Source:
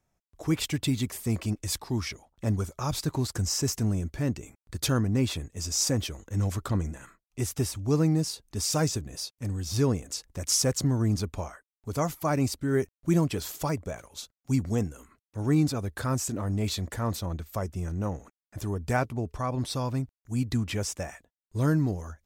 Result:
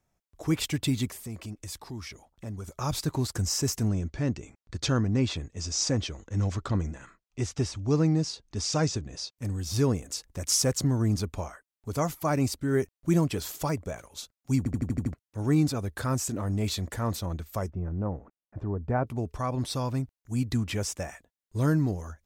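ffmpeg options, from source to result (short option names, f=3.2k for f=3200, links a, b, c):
-filter_complex "[0:a]asettb=1/sr,asplit=3[a][b][c];[a]atrim=end=1.124[d];[b]atrim=start=1.12:end=2.68,asetpts=PTS-STARTPTS,afade=t=in:d=0.004:c=qsin,afade=t=out:st=1.556:d=0.004:c=qsin,acompressor=threshold=-42dB:ratio=2:attack=3.2:release=140:knee=1:detection=peak[e];[c]atrim=start=2.676[f];[d][e]acrossfade=d=0.004:c1=hsin:c2=qsin[g];[g][f]acrossfade=d=0.004:c1=qsin:c2=hsin,asettb=1/sr,asplit=3[h][i][j];[h]atrim=end=3.884[k];[i]atrim=start=3.88:end=9.36,asetpts=PTS-STARTPTS,afade=t=in:d=0.004:c=qsin,afade=t=out:st=5.476:d=0.004:c=qsin,lowpass=f=6.8k:w=0.5412,lowpass=f=6.8k:w=1.3066[l];[j]atrim=start=9.356[m];[k][l]acrossfade=d=0.004:c1=hsin:c2=qsin[n];[n][m]acrossfade=d=0.004:c1=qsin:c2=hsin,asettb=1/sr,asplit=3[o][p][q];[o]atrim=end=17.704[r];[p]atrim=start=17.7:end=19.07,asetpts=PTS-STARTPTS,afade=t=in:d=0.004:c=qsin,afade=t=out:st=1.366:d=0.004:c=qsin,lowpass=1.1k[s];[q]atrim=start=19.066[t];[r][s]acrossfade=d=0.004:c1=hsin:c2=qsin[u];[u][t]acrossfade=d=0.004:c1=qsin:c2=hsin,asplit=8[v][w][x][y][z][aa][ab][ac];[v]atrim=end=14.662[ad];[w]atrim=start=14.578:end=14.662[ae];[x]atrim=start=14.578:end=14.662[af];[y]atrim=start=14.578:end=14.662[ag];[z]atrim=start=14.578:end=14.662[ah];[aa]atrim=start=14.578:end=14.662[ai];[ab]atrim=start=14.578:end=14.662[aj];[ac]atrim=start=15.138[ak];[ad][ae]acrossfade=d=0.004:c1=hsin:c2=hsin[al];[al][af]acrossfade=d=0.004:c1=hsin:c2=hsin[am];[am][ag]acrossfade=d=0.004:c1=hsin:c2=hsin[an];[an][ah]acrossfade=d=0.004:c1=hsin:c2=hsin[ao];[ao][ai]acrossfade=d=0.004:c1=hsin:c2=hsin[ap];[ap][aj]acrossfade=d=0.004:c1=hsin:c2=hsin[aq];[aq][ak]acrossfade=d=0.004:c1=hsin:c2=hsin"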